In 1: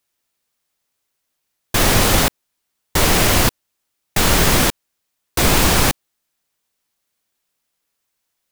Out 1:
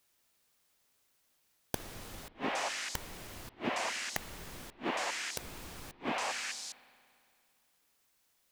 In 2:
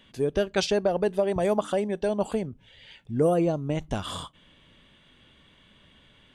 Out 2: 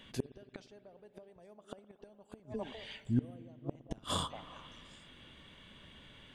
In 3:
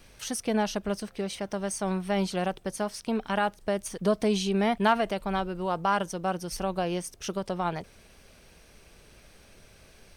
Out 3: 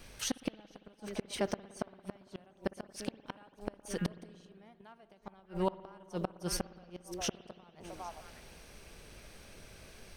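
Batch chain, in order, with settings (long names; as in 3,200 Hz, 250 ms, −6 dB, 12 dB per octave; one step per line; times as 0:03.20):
echo through a band-pass that steps 202 ms, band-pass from 310 Hz, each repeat 1.4 octaves, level −11 dB
gate with flip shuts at −20 dBFS, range −34 dB
spring reverb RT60 2.3 s, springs 57 ms, chirp 45 ms, DRR 16 dB
level +1 dB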